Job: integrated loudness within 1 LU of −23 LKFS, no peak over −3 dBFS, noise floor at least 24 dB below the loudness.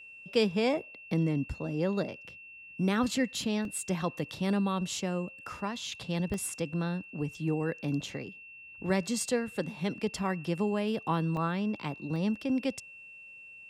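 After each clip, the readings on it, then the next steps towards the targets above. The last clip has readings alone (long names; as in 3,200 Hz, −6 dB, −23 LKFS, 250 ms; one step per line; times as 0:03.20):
number of dropouts 4; longest dropout 1.5 ms; interfering tone 2,700 Hz; level of the tone −47 dBFS; integrated loudness −32.0 LKFS; sample peak −14.0 dBFS; target loudness −23.0 LKFS
→ repair the gap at 0:03.65/0:06.34/0:11.37/0:12.16, 1.5 ms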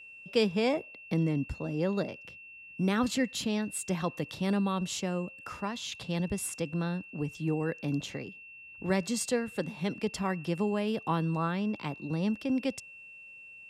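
number of dropouts 0; interfering tone 2,700 Hz; level of the tone −47 dBFS
→ notch filter 2,700 Hz, Q 30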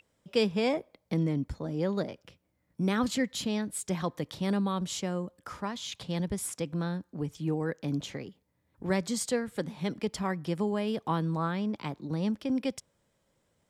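interfering tone none found; integrated loudness −32.0 LKFS; sample peak −14.0 dBFS; target loudness −23.0 LKFS
→ level +9 dB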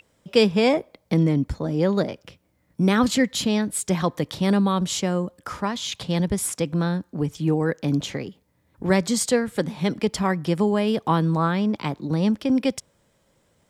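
integrated loudness −23.0 LKFS; sample peak −5.0 dBFS; background noise floor −66 dBFS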